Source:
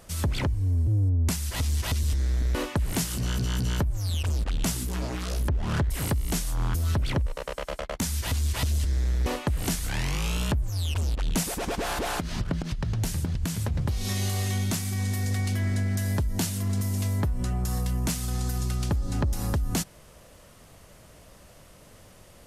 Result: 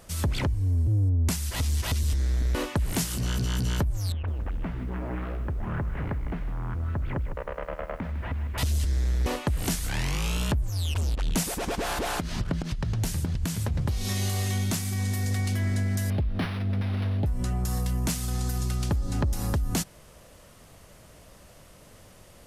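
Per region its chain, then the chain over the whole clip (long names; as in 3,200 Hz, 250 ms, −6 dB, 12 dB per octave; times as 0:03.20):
0:04.12–0:08.58: downward compressor 12 to 1, threshold −26 dBFS + low-pass filter 2,100 Hz 24 dB per octave + feedback echo at a low word length 155 ms, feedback 35%, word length 9 bits, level −10.5 dB
0:16.10–0:17.26: Chebyshev band-stop filter 830–3,500 Hz, order 5 + linearly interpolated sample-rate reduction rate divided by 6×
whole clip: no processing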